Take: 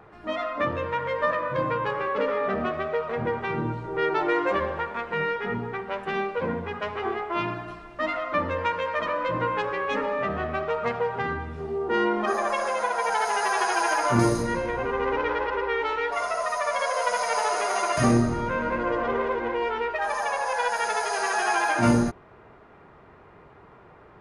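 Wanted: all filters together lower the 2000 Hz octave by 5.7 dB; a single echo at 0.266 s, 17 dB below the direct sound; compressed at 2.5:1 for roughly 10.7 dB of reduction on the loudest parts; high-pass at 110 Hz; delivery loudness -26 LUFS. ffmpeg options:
-af "highpass=110,equalizer=f=2k:t=o:g=-7.5,acompressor=threshold=-33dB:ratio=2.5,aecho=1:1:266:0.141,volume=8dB"

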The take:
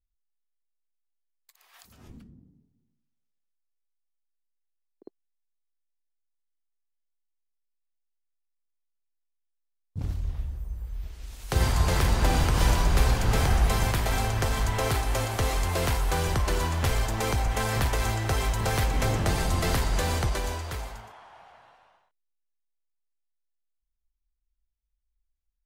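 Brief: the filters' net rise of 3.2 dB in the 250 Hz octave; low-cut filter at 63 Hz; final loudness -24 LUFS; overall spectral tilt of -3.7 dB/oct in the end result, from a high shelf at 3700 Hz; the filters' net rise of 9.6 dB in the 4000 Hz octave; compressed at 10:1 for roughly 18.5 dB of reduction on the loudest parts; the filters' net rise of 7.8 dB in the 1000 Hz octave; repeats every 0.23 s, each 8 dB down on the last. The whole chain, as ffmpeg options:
-af "highpass=63,equalizer=f=250:t=o:g=4,equalizer=f=1k:t=o:g=8.5,highshelf=f=3.7k:g=8.5,equalizer=f=4k:t=o:g=6,acompressor=threshold=-37dB:ratio=10,aecho=1:1:230|460|690|920|1150:0.398|0.159|0.0637|0.0255|0.0102,volume=15.5dB"

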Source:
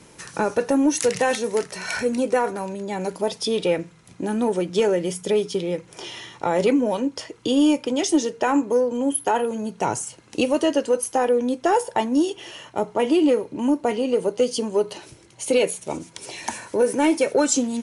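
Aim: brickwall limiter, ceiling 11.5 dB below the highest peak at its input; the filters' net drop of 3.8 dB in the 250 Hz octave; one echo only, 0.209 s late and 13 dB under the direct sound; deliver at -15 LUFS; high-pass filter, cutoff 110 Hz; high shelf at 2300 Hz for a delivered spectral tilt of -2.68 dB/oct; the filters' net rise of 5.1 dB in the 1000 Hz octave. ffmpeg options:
-af "highpass=110,equalizer=f=250:t=o:g=-5,equalizer=f=1k:t=o:g=6,highshelf=f=2.3k:g=4.5,alimiter=limit=-14.5dB:level=0:latency=1,aecho=1:1:209:0.224,volume=10dB"

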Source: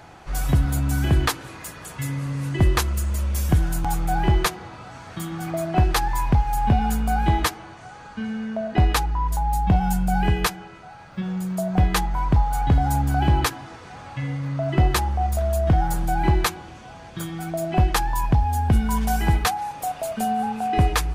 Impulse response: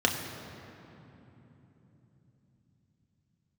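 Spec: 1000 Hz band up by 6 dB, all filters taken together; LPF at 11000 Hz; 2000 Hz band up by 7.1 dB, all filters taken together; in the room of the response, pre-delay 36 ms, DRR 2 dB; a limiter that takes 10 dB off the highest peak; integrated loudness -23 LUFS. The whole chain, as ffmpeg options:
-filter_complex "[0:a]lowpass=11k,equalizer=f=1k:t=o:g=7,equalizer=f=2k:t=o:g=6.5,alimiter=limit=-13dB:level=0:latency=1,asplit=2[a][b];[1:a]atrim=start_sample=2205,adelay=36[c];[b][c]afir=irnorm=-1:irlink=0,volume=-14.5dB[d];[a][d]amix=inputs=2:normalize=0,volume=-1.5dB"

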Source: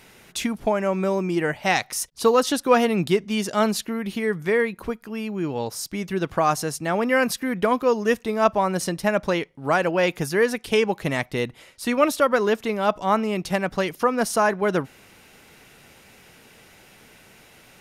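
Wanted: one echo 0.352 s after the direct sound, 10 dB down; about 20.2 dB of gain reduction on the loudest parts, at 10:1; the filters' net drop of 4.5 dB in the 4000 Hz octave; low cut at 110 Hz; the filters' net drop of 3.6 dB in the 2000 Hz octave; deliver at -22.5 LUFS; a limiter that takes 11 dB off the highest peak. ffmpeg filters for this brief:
-af "highpass=110,equalizer=f=2k:t=o:g=-3.5,equalizer=f=4k:t=o:g=-5,acompressor=threshold=-34dB:ratio=10,alimiter=level_in=8.5dB:limit=-24dB:level=0:latency=1,volume=-8.5dB,aecho=1:1:352:0.316,volume=19.5dB"

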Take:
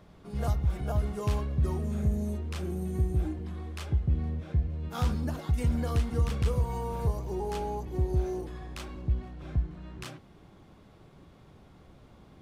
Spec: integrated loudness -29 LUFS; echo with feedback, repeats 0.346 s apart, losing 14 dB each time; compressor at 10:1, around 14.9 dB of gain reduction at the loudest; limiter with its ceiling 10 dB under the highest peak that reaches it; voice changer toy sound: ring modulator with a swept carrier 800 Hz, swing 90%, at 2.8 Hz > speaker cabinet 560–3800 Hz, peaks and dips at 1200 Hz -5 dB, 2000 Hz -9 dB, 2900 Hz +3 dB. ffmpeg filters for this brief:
-af "acompressor=threshold=-37dB:ratio=10,alimiter=level_in=13dB:limit=-24dB:level=0:latency=1,volume=-13dB,aecho=1:1:346|692:0.2|0.0399,aeval=exprs='val(0)*sin(2*PI*800*n/s+800*0.9/2.8*sin(2*PI*2.8*n/s))':c=same,highpass=560,equalizer=f=1.2k:t=q:w=4:g=-5,equalizer=f=2k:t=q:w=4:g=-9,equalizer=f=2.9k:t=q:w=4:g=3,lowpass=f=3.8k:w=0.5412,lowpass=f=3.8k:w=1.3066,volume=22dB"

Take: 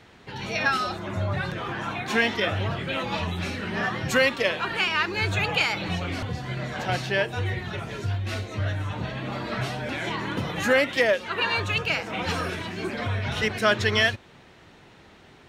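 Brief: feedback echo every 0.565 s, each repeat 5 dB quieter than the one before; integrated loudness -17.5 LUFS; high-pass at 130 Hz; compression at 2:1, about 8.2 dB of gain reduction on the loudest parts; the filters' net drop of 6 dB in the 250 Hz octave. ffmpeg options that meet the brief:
-af "highpass=130,equalizer=f=250:t=o:g=-7.5,acompressor=threshold=-32dB:ratio=2,aecho=1:1:565|1130|1695|2260|2825|3390|3955:0.562|0.315|0.176|0.0988|0.0553|0.031|0.0173,volume=13.5dB"

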